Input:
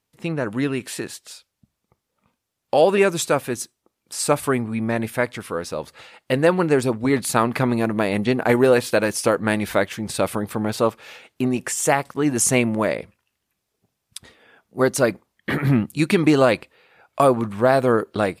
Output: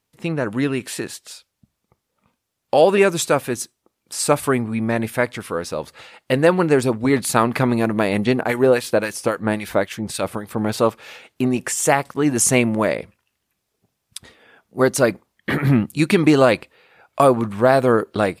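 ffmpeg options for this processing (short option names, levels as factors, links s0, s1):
-filter_complex "[0:a]asettb=1/sr,asplit=3[s0][s1][s2];[s0]atrim=end=8.414[s3];[s1]atrim=start=8.41:end=10.58,asetpts=PTS-STARTPTS,afade=t=in:d=0.004:c=qsin,afade=t=out:st=2.166:d=0.004:c=qsin,acrossover=split=1300[s4][s5];[s4]aeval=exprs='val(0)*(1-0.7/2+0.7/2*cos(2*PI*3.7*n/s))':c=same[s6];[s5]aeval=exprs='val(0)*(1-0.7/2-0.7/2*cos(2*PI*3.7*n/s))':c=same[s7];[s6][s7]amix=inputs=2:normalize=0[s8];[s2]atrim=start=10.576[s9];[s3][s8]acrossfade=d=0.004:c1=hsin:c2=qsin[s10];[s10][s9]acrossfade=d=0.004:c1=qsin:c2=hsin,volume=1.26"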